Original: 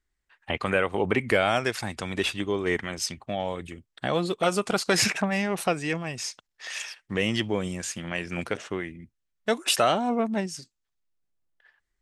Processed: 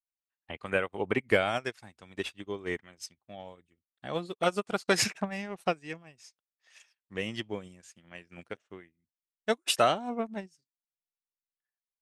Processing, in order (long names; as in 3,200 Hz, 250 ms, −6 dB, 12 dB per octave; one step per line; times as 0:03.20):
expander for the loud parts 2.5 to 1, over −43 dBFS